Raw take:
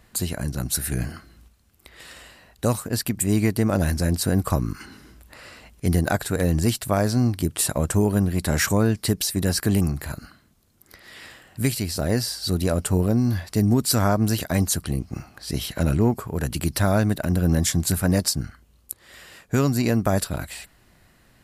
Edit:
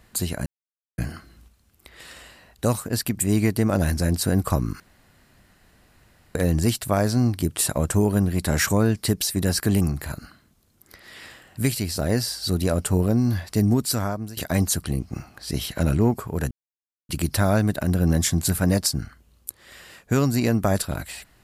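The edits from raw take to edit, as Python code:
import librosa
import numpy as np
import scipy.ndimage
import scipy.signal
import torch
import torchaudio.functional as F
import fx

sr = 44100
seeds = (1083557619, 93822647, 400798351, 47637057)

y = fx.edit(x, sr, fx.silence(start_s=0.46, length_s=0.52),
    fx.room_tone_fill(start_s=4.8, length_s=1.55),
    fx.fade_out_to(start_s=13.67, length_s=0.7, floor_db=-20.5),
    fx.insert_silence(at_s=16.51, length_s=0.58), tone=tone)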